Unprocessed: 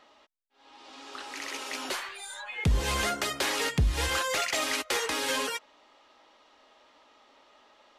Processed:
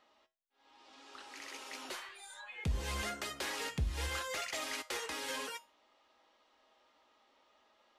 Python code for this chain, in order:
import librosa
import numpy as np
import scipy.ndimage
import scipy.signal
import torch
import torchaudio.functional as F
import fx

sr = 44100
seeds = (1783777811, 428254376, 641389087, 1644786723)

y = fx.comb_fb(x, sr, f0_hz=72.0, decay_s=0.28, harmonics='odd', damping=0.0, mix_pct=60)
y = y * librosa.db_to_amplitude(-4.5)